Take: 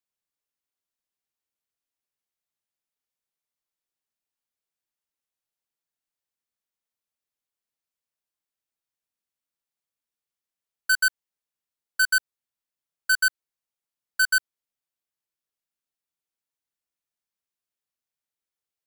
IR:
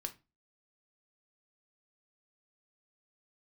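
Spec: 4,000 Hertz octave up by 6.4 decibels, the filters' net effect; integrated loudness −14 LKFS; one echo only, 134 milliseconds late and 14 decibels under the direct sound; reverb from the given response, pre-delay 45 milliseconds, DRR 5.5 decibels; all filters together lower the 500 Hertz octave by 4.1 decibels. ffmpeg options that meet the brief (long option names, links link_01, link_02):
-filter_complex "[0:a]equalizer=frequency=500:width_type=o:gain=-5.5,equalizer=frequency=4000:width_type=o:gain=7.5,aecho=1:1:134:0.2,asplit=2[link_01][link_02];[1:a]atrim=start_sample=2205,adelay=45[link_03];[link_02][link_03]afir=irnorm=-1:irlink=0,volume=-4dB[link_04];[link_01][link_04]amix=inputs=2:normalize=0,volume=6.5dB"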